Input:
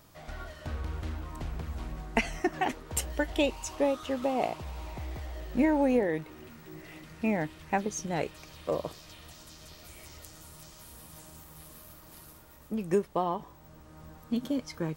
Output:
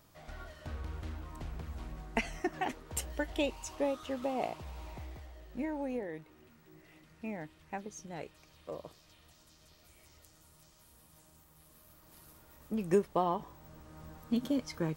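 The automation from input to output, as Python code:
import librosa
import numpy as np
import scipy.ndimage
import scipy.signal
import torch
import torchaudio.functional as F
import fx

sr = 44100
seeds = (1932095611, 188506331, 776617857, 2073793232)

y = fx.gain(x, sr, db=fx.line((4.95, -5.5), (5.36, -12.0), (11.61, -12.0), (12.85, -1.0)))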